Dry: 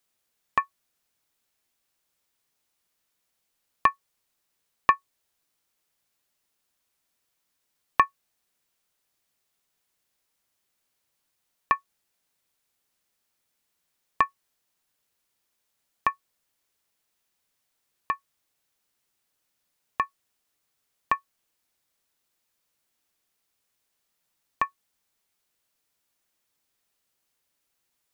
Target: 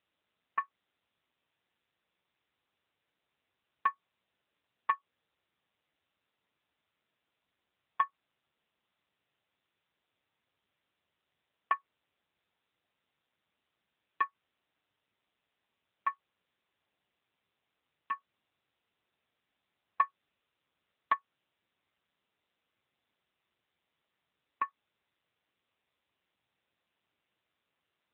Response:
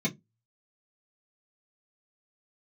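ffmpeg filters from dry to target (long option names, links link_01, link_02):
-filter_complex "[0:a]asplit=3[link_01][link_02][link_03];[link_01]afade=type=out:start_time=18.11:duration=0.02[link_04];[link_02]acontrast=49,afade=type=in:start_time=18.11:duration=0.02,afade=type=out:start_time=21.12:duration=0.02[link_05];[link_03]afade=type=in:start_time=21.12:duration=0.02[link_06];[link_04][link_05][link_06]amix=inputs=3:normalize=0,asoftclip=type=hard:threshold=-10.5dB,volume=-4.5dB" -ar 8000 -c:a libopencore_amrnb -b:a 7950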